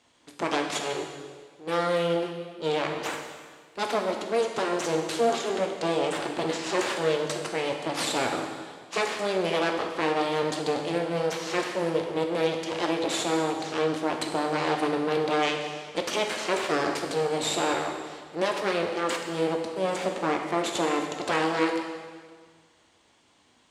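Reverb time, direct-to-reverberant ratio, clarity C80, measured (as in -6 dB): 1.7 s, 2.5 dB, 6.5 dB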